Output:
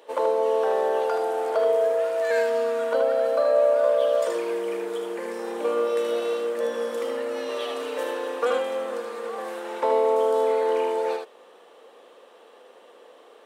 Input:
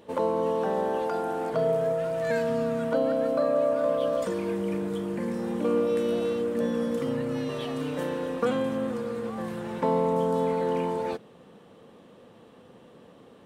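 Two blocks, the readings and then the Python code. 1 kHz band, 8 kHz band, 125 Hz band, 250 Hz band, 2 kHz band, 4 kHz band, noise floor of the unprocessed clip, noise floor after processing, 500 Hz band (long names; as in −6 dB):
+3.5 dB, +5.0 dB, below −20 dB, −9.0 dB, +4.5 dB, +5.0 dB, −53 dBFS, −52 dBFS, +4.0 dB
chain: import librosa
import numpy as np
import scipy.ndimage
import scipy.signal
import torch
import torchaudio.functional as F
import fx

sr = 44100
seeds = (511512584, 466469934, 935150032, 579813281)

y = scipy.signal.sosfilt(scipy.signal.butter(4, 420.0, 'highpass', fs=sr, output='sos'), x)
y = y + 10.0 ** (-4.5 / 20.0) * np.pad(y, (int(77 * sr / 1000.0), 0))[:len(y)]
y = y * 10.0 ** (3.5 / 20.0)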